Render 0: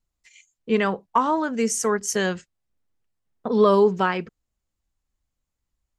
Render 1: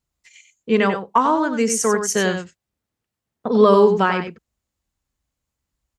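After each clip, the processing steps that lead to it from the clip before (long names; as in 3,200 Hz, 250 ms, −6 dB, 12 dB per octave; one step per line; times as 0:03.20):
high-pass filter 52 Hz
on a send: single-tap delay 94 ms −8 dB
on the sum: level +3.5 dB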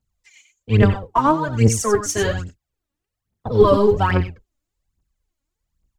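sub-octave generator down 1 octave, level +3 dB
phase shifter 1.2 Hz, delay 3.7 ms, feedback 70%
level −5 dB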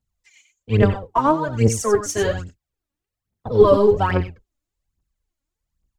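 dynamic equaliser 530 Hz, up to +5 dB, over −29 dBFS, Q 1.1
level −3 dB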